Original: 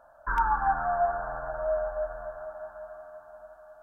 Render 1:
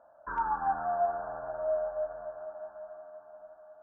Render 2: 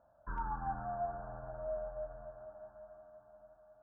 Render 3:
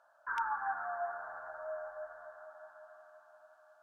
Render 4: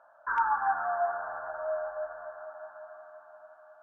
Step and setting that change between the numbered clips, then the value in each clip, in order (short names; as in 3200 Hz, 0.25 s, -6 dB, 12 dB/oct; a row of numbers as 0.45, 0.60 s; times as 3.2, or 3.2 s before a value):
band-pass, frequency: 390, 130, 3900, 1400 Hz